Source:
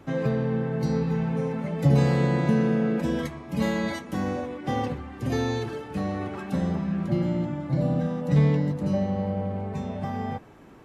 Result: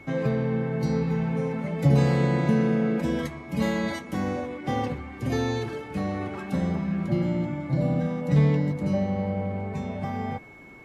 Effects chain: whistle 2.2 kHz -48 dBFS

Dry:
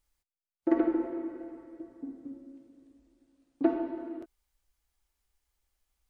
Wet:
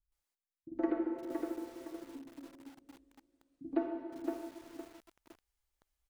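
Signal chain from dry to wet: bands offset in time lows, highs 120 ms, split 210 Hz; bit-crushed delay 512 ms, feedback 35%, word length 8-bit, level -4 dB; trim -6 dB

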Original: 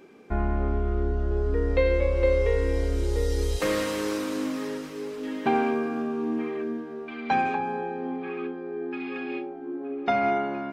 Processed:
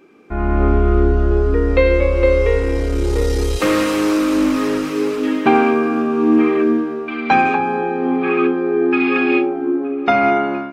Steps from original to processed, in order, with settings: graphic EQ with 31 bands 315 Hz +7 dB, 1.25 kHz +7 dB, 2.5 kHz +5 dB; level rider gain up to 16.5 dB; 2.58–4.87 s: valve stage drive 7 dB, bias 0.3; trim -1 dB

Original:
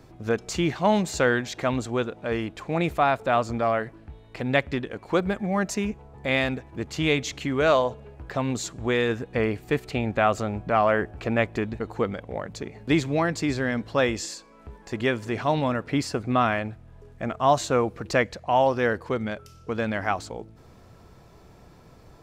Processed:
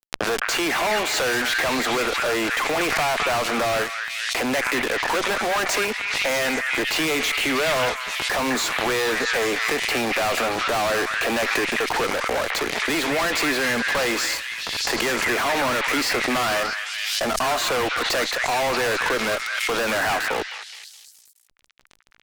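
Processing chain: steep high-pass 230 Hz 72 dB/octave; three-band isolator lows -14 dB, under 570 Hz, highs -14 dB, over 3.6 kHz; in parallel at -2 dB: compression, threshold -37 dBFS, peak gain reduction 18.5 dB; on the sum: fuzz box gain 47 dB, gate -44 dBFS; on a send: repeats whose band climbs or falls 210 ms, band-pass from 1.7 kHz, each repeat 0.7 oct, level -1.5 dB; on the sum: swell ahead of each attack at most 25 dB/s; trim -8 dB

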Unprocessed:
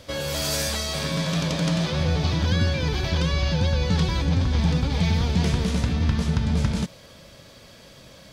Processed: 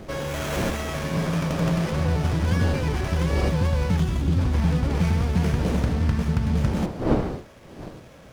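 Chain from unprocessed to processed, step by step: wind noise 410 Hz -32 dBFS; time-frequency box 3.98–4.38 s, 390–2500 Hz -9 dB; sliding maximum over 9 samples

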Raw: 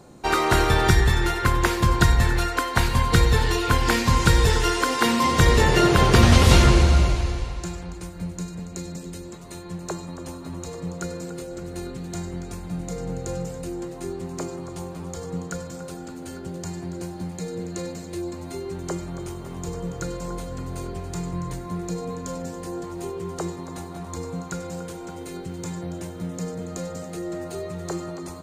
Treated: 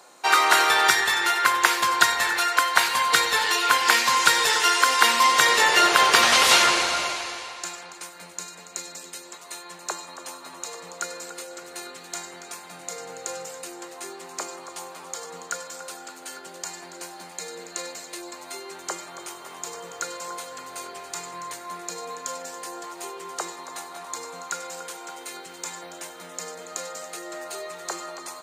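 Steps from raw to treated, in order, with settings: high-pass 910 Hz 12 dB/octave; trim +6 dB

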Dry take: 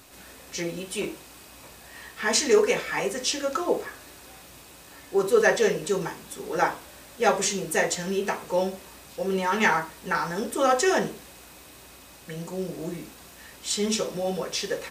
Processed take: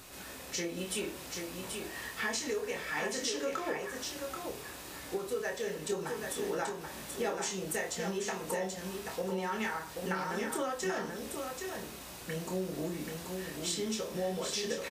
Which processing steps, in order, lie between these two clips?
compression 12:1, threshold -33 dBFS, peak gain reduction 19 dB; doubling 27 ms -6.5 dB; on a send: delay 783 ms -5 dB

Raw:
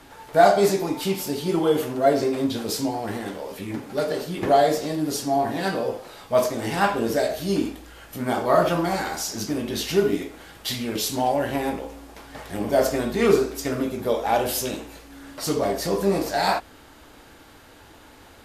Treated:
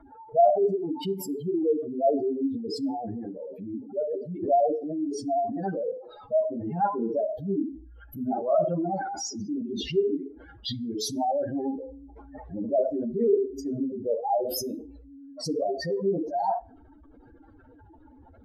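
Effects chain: spectral contrast enhancement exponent 3.6; vibrato 11 Hz 28 cents; on a send: reverberation, pre-delay 4 ms, DRR 21 dB; on the sum: trim -3.5 dB

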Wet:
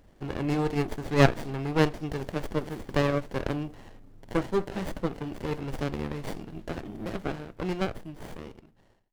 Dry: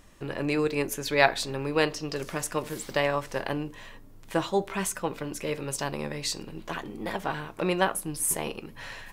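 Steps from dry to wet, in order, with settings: fade out at the end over 2.21 s; sliding maximum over 33 samples

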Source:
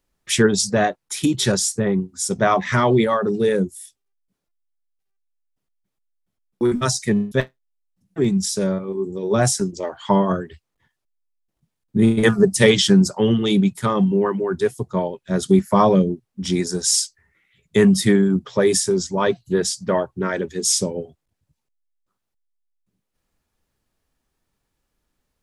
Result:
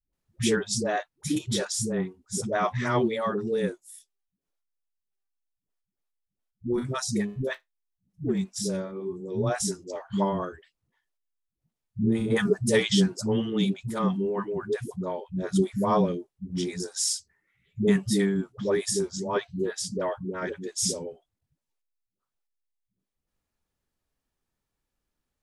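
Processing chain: phase dispersion highs, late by 131 ms, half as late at 330 Hz; trim -8.5 dB

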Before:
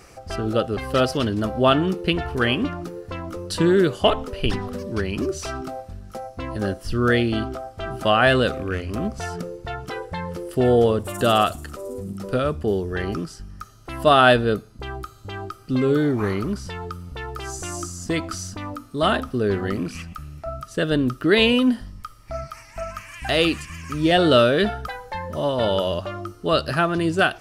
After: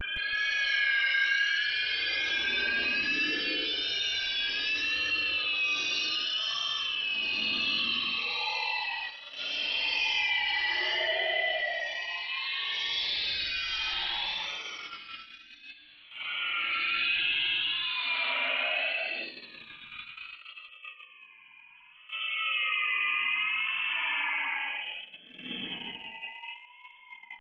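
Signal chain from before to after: spectrum inverted on a logarithmic axis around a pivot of 620 Hz; tape echo 349 ms, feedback 46%, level -9 dB, low-pass 1.6 kHz; upward compressor, threshold -25 dBFS; bass shelf 360 Hz -10.5 dB; inverted gate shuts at -21 dBFS, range -25 dB; Paulstretch 5.2×, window 0.25 s, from 21.78 s; frequency inversion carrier 3.2 kHz; hum notches 50/100/150/200/250 Hz; vibrato 0.64 Hz 72 cents; ever faster or slower copies 165 ms, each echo +5 st, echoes 2, each echo -6 dB; gate -46 dBFS, range -31 dB; level flattener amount 50%

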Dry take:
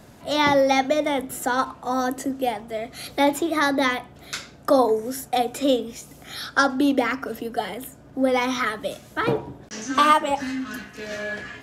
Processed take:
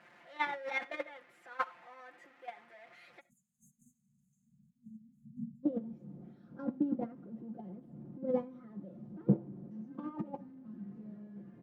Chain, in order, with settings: jump at every zero crossing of -21 dBFS; high-pass 51 Hz 6 dB/octave; delay 310 ms -22 dB; gate -14 dBFS, range -36 dB; tilt shelf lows +8 dB, about 1.3 kHz; compressor with a negative ratio -29 dBFS, ratio -1; spectral selection erased 3.20–5.64 s, 240–6200 Hz; reverberation, pre-delay 25 ms, DRR 19.5 dB; band-pass sweep 2 kHz -> 210 Hz, 4.09–5.43 s; comb 5.7 ms, depth 73%; trim +4 dB

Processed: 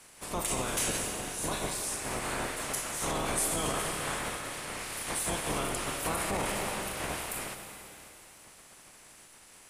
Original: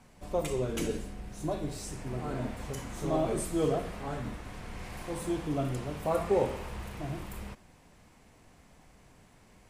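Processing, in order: spectral peaks clipped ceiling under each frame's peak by 23 dB; reverberation RT60 3.0 s, pre-delay 85 ms, DRR 7 dB; peak limiter -22.5 dBFS, peak gain reduction 9.5 dB; peaking EQ 10 kHz +9.5 dB 0.72 oct

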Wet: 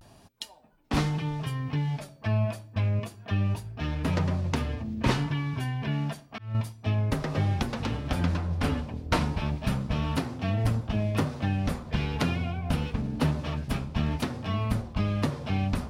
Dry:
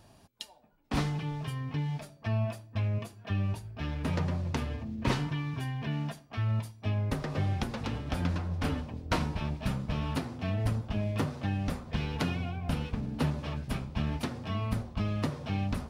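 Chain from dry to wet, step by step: vibrato 0.31 Hz 36 cents; 5.93–6.55 s: slow attack 375 ms; trim +4 dB

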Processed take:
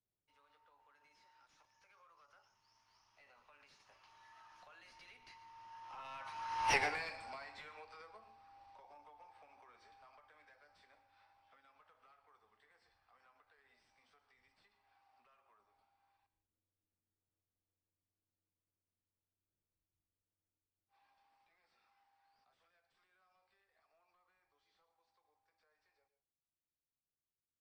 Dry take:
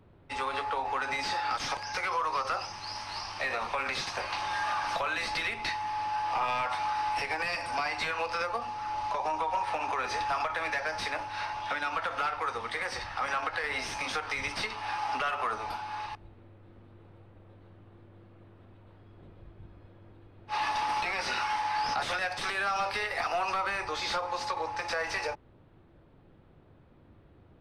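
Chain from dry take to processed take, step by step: Doppler pass-by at 6.75 s, 23 m/s, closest 1.2 m; on a send: reverberation RT60 0.30 s, pre-delay 113 ms, DRR 13 dB; on the sum: trim +2.5 dB

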